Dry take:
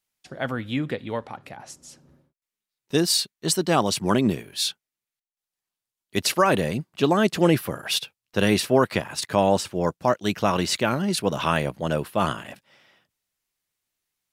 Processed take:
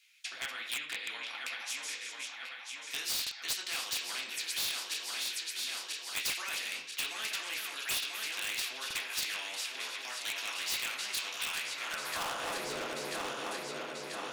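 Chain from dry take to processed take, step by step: regenerating reverse delay 0.494 s, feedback 67%, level -11 dB; compressor 3:1, threshold -31 dBFS, peak gain reduction 13.5 dB; reverb RT60 0.40 s, pre-delay 3 ms, DRR -2.5 dB; high-pass sweep 2600 Hz -> 410 Hz, 11.71–12.62; high shelf 8500 Hz -11.5 dB; overloaded stage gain 26.5 dB; low shelf 230 Hz -8 dB; stuck buffer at 3.22/8.86, samples 2048, times 1; spectral compressor 2:1; gain +5 dB

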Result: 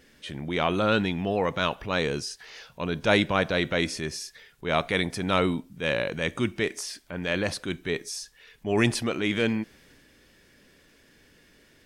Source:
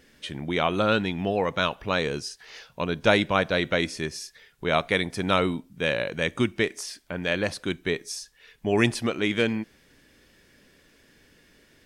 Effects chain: transient shaper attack -5 dB, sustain +3 dB

